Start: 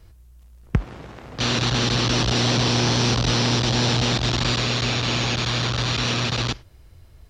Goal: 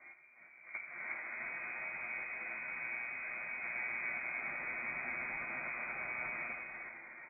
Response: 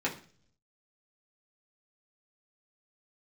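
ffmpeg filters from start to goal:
-filter_complex "[0:a]highpass=140,lowshelf=f=200:g=-4.5,acompressor=threshold=0.00708:ratio=16,aeval=exprs='(tanh(89.1*val(0)+0.5)-tanh(0.5))/89.1':c=same,asplit=3[s0][s1][s2];[s0]afade=t=out:st=1.12:d=0.02[s3];[s1]flanger=delay=18:depth=6.7:speed=1.2,afade=t=in:st=1.12:d=0.02,afade=t=out:st=3.6:d=0.02[s4];[s2]afade=t=in:st=3.6:d=0.02[s5];[s3][s4][s5]amix=inputs=3:normalize=0,asplit=7[s6][s7][s8][s9][s10][s11][s12];[s7]adelay=356,afreqshift=130,volume=0.501[s13];[s8]adelay=712,afreqshift=260,volume=0.26[s14];[s9]adelay=1068,afreqshift=390,volume=0.135[s15];[s10]adelay=1424,afreqshift=520,volume=0.0708[s16];[s11]adelay=1780,afreqshift=650,volume=0.0367[s17];[s12]adelay=2136,afreqshift=780,volume=0.0191[s18];[s6][s13][s14][s15][s16][s17][s18]amix=inputs=7:normalize=0[s19];[1:a]atrim=start_sample=2205,asetrate=52920,aresample=44100[s20];[s19][s20]afir=irnorm=-1:irlink=0,lowpass=f=2100:t=q:w=0.5098,lowpass=f=2100:t=q:w=0.6013,lowpass=f=2100:t=q:w=0.9,lowpass=f=2100:t=q:w=2.563,afreqshift=-2500,volume=1.26"

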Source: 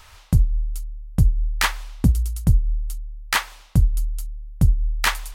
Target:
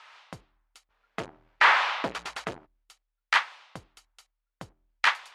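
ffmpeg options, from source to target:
-filter_complex "[0:a]asplit=3[s0][s1][s2];[s0]afade=t=out:st=0.89:d=0.02[s3];[s1]asplit=2[s4][s5];[s5]highpass=f=720:p=1,volume=70.8,asoftclip=type=tanh:threshold=0.531[s6];[s4][s6]amix=inputs=2:normalize=0,lowpass=f=1400:p=1,volume=0.501,afade=t=in:st=0.89:d=0.02,afade=t=out:st=2.65:d=0.02[s7];[s2]afade=t=in:st=2.65:d=0.02[s8];[s3][s7][s8]amix=inputs=3:normalize=0,highpass=730,lowpass=3200"

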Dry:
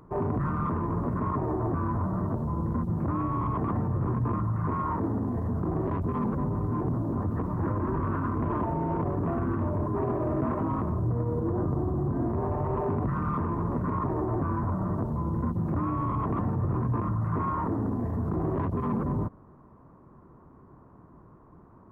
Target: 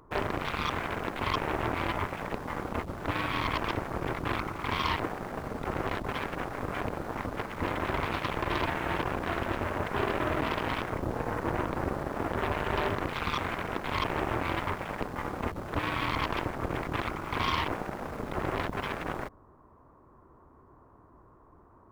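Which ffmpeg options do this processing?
-filter_complex "[0:a]equalizer=f=170:t=o:w=1.3:g=-11.5,aeval=exprs='0.106*(cos(1*acos(clip(val(0)/0.106,-1,1)))-cos(1*PI/2))+0.0299*(cos(7*acos(clip(val(0)/0.106,-1,1)))-cos(7*PI/2))+0.000841*(cos(8*acos(clip(val(0)/0.106,-1,1)))-cos(8*PI/2))':c=same,asplit=2[s0][s1];[s1]acrusher=bits=6:mix=0:aa=0.000001,volume=0.282[s2];[s0][s2]amix=inputs=2:normalize=0"

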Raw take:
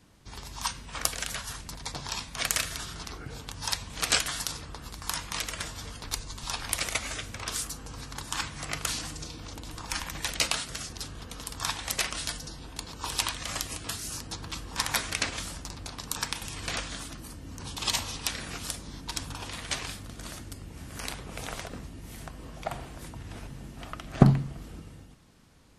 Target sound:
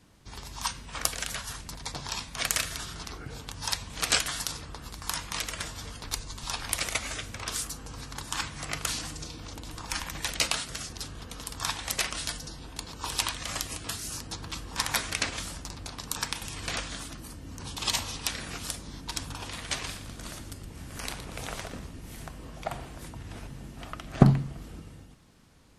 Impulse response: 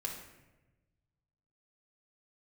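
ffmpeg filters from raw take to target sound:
-filter_complex "[0:a]asettb=1/sr,asplit=3[s0][s1][s2];[s0]atrim=end=19.724[s3];[s1]atrim=start=19.72:end=22.39,asetpts=PTS-STARTPTS,afade=t=in:d=0.004:c=qsin,afade=t=out:st=2.666:d=0.004:c=qsin,asplit=5[s4][s5][s6][s7][s8];[s5]adelay=117,afreqshift=-77,volume=0.266[s9];[s6]adelay=234,afreqshift=-154,volume=0.117[s10];[s7]adelay=351,afreqshift=-231,volume=0.0513[s11];[s8]adelay=468,afreqshift=-308,volume=0.0226[s12];[s4][s9][s10][s11][s12]amix=inputs=5:normalize=0,atrim=end_sample=117747[s13];[s2]atrim=start=22.386[s14];[s3][s13]acrossfade=d=0.004:c1=hsin:c2=qsin[s15];[s15][s14]acrossfade=d=0.004:c1=qsin:c2=hsin"

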